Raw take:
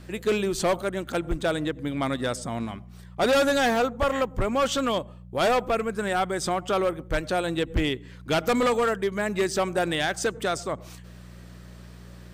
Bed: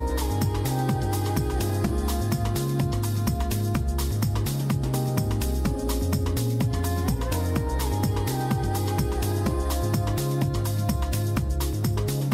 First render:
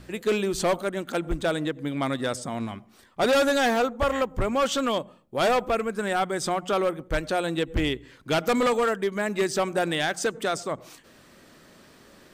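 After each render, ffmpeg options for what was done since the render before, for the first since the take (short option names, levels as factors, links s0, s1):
-af "bandreject=f=60:t=h:w=4,bandreject=f=120:t=h:w=4,bandreject=f=180:t=h:w=4"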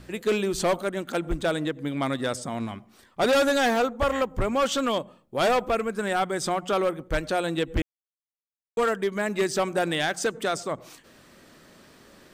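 -filter_complex "[0:a]asplit=3[s0][s1][s2];[s0]atrim=end=7.82,asetpts=PTS-STARTPTS,afade=t=out:st=7.816:d=0.004:c=hsin[s3];[s1]atrim=start=7.82:end=8.77,asetpts=PTS-STARTPTS,volume=0[s4];[s2]atrim=start=8.77,asetpts=PTS-STARTPTS,afade=t=in:d=0.004:c=hsin[s5];[s3][s4][s5]concat=n=3:v=0:a=1"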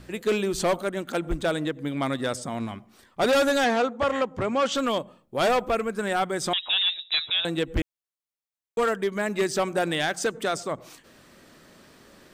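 -filter_complex "[0:a]asettb=1/sr,asplit=3[s0][s1][s2];[s0]atrim=end=3.644[s3];[s1]atrim=start=3.64:end=4.75,asetpts=PTS-STARTPTS,afade=t=in:d=0.004:c=qsin,afade=t=out:st=1.106:d=0.004:c=qsin,highpass=110,lowpass=6800[s4];[s2]atrim=start=4.746[s5];[s3][s4]acrossfade=d=0.004:c1=hsin:c2=qsin[s6];[s6][s5]acrossfade=d=0.004:c1=qsin:c2=hsin,asettb=1/sr,asplit=3[s7][s8][s9];[s7]atrim=end=6.534[s10];[s8]atrim=start=6.53:end=7.45,asetpts=PTS-STARTPTS,afade=t=in:d=0.004:c=qsin,afade=t=out:st=0.916:d=0.004:c=qsin,lowpass=f=3400:t=q:w=0.5098,lowpass=f=3400:t=q:w=0.6013,lowpass=f=3400:t=q:w=0.9,lowpass=f=3400:t=q:w=2.563,afreqshift=-4000[s11];[s9]atrim=start=7.446[s12];[s10][s11]acrossfade=d=0.004:c1=hsin:c2=qsin[s13];[s13][s12]acrossfade=d=0.004:c1=qsin:c2=hsin"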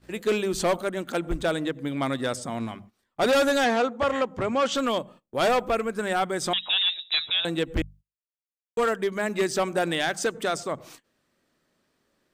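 -af "bandreject=f=50:t=h:w=6,bandreject=f=100:t=h:w=6,bandreject=f=150:t=h:w=6,bandreject=f=200:t=h:w=6,agate=range=0.112:threshold=0.00447:ratio=16:detection=peak"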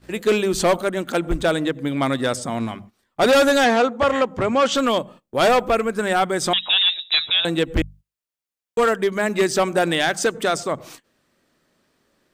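-af "volume=2"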